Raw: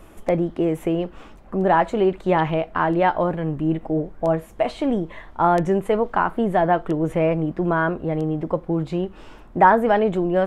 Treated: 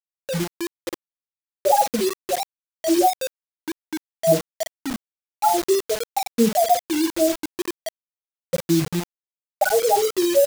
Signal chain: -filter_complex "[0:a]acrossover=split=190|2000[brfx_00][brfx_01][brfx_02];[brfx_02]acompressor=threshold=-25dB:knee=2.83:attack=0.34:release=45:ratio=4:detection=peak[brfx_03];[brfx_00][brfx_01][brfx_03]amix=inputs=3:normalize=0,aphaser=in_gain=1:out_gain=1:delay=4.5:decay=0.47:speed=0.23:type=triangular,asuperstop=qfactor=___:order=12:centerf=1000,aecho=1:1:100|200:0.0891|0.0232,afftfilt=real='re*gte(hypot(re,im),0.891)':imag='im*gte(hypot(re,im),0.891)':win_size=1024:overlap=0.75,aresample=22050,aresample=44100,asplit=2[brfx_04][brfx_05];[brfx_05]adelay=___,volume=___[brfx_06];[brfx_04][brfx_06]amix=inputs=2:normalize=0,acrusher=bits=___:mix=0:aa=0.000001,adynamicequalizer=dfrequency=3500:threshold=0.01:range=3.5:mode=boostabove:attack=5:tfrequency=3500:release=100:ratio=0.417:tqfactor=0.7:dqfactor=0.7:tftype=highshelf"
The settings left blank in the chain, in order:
3.7, 46, -11dB, 4